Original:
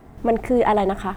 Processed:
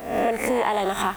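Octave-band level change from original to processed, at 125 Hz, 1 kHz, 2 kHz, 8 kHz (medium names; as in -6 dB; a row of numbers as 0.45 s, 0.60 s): -6.5 dB, -1.5 dB, +3.5 dB, no reading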